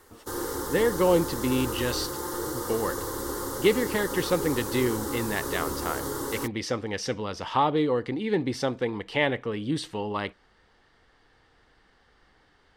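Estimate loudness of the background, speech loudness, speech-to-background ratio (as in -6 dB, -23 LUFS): -32.0 LUFS, -28.0 LUFS, 4.0 dB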